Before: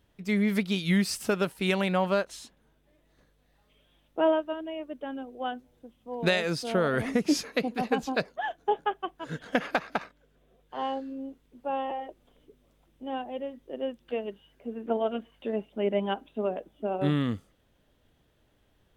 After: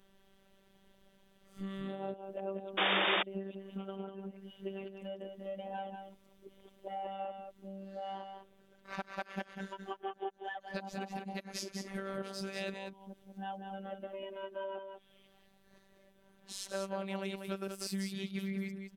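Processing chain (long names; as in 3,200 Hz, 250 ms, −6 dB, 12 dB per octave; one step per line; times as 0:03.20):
played backwards from end to start
downward compressor 6 to 1, threshold −40 dBFS, peak gain reduction 19.5 dB
on a send: single-tap delay 192 ms −6.5 dB
on the sum: phases set to zero 194 Hz
sound drawn into the spectrogram noise, 0:02.77–0:03.23, 290–3,700 Hz −34 dBFS
level +3.5 dB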